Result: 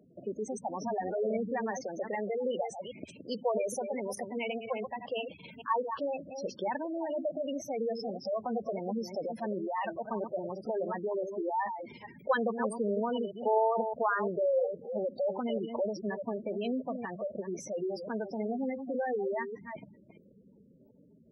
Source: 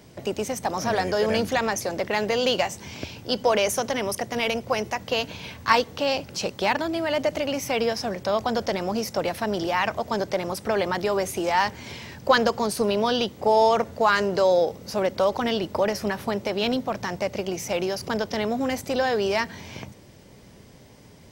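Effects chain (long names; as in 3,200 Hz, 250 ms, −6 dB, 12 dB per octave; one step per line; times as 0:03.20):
delay that plays each chunk backwards 208 ms, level −7.5 dB
gate on every frequency bin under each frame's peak −10 dB strong
low shelf with overshoot 140 Hz −10.5 dB, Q 1.5
level −9 dB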